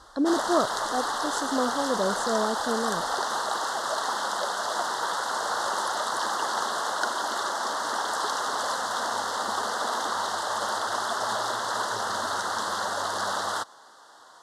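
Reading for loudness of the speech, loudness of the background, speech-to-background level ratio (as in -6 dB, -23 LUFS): -29.0 LUFS, -28.0 LUFS, -1.0 dB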